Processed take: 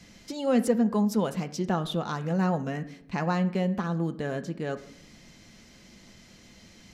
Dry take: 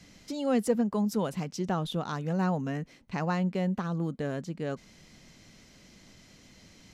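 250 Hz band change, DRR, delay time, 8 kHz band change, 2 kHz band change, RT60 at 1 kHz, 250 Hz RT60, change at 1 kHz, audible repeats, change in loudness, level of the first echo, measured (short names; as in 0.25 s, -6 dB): +3.0 dB, 7.0 dB, none, +2.0 dB, +3.0 dB, 0.65 s, 1.2 s, +2.5 dB, none, +2.5 dB, none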